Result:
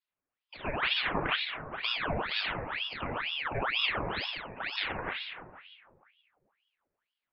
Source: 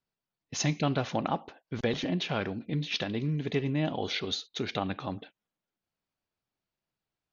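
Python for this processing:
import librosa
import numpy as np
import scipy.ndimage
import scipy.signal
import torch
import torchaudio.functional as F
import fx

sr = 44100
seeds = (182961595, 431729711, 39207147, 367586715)

y = scipy.signal.sosfilt(scipy.signal.cheby1(8, 1.0, 2200.0, 'lowpass', fs=sr, output='sos'), x)
y = fx.low_shelf(y, sr, hz=240.0, db=-11.0)
y = fx.room_shoebox(y, sr, seeds[0], volume_m3=1300.0, walls='mixed', distance_m=2.5)
y = fx.ring_lfo(y, sr, carrier_hz=1700.0, swing_pct=85, hz=2.1)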